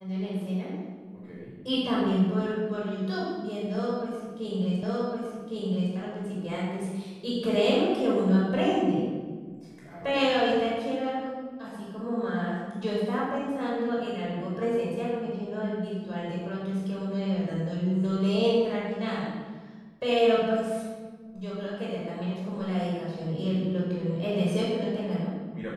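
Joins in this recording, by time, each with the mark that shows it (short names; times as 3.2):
4.83 repeat of the last 1.11 s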